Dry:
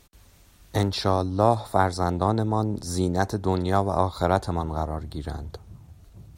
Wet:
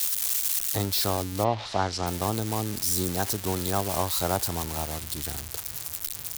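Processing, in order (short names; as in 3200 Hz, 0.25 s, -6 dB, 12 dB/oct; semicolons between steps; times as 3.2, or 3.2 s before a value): switching spikes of -13 dBFS; 1.43–2.06 LPF 3700 Hz -> 6800 Hz 24 dB/oct; gain -5.5 dB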